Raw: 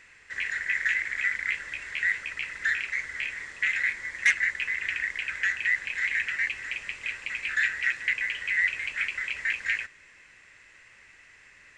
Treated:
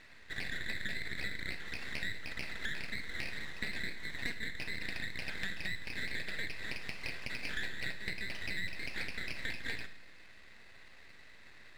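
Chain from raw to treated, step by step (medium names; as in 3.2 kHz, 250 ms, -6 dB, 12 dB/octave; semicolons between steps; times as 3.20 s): low-pass 6.1 kHz; treble shelf 2.8 kHz -8.5 dB; compression 6:1, threshold -36 dBFS, peak gain reduction 15.5 dB; half-wave rectifier; on a send: reverberation RT60 0.65 s, pre-delay 33 ms, DRR 10 dB; on the sum: trim +3 dB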